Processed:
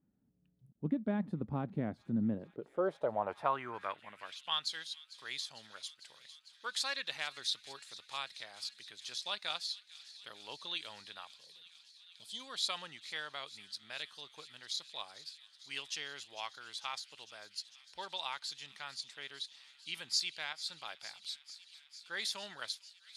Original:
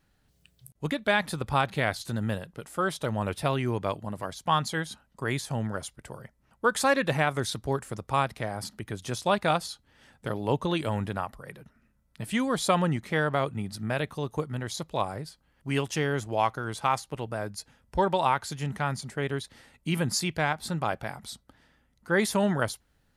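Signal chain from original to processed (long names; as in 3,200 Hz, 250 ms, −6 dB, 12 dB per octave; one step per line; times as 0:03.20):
gain on a spectral selection 0:11.26–0:12.40, 1,100–3,000 Hz −21 dB
delay with a high-pass on its return 450 ms, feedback 82%, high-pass 2,800 Hz, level −15.5 dB
band-pass filter sweep 230 Hz → 4,100 Hz, 0:02.20–0:04.67
level +1.5 dB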